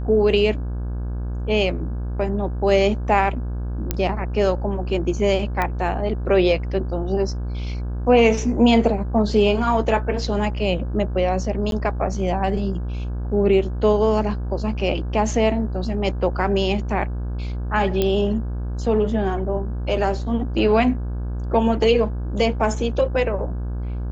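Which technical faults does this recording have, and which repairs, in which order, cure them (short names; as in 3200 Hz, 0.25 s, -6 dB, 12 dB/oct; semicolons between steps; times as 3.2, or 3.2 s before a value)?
buzz 60 Hz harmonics 28 -26 dBFS
3.91 pop -6 dBFS
5.62 pop -10 dBFS
11.71–11.72 gap 12 ms
18.02 pop -8 dBFS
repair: de-click; de-hum 60 Hz, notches 28; interpolate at 11.71, 12 ms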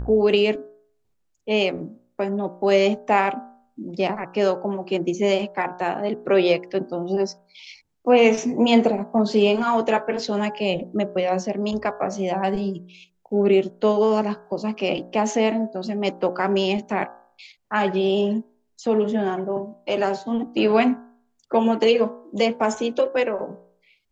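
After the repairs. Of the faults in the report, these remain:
none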